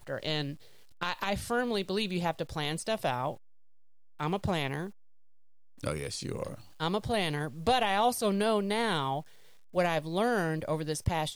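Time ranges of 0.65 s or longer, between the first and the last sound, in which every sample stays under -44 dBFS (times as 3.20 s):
3.37–4.20 s
4.90–5.78 s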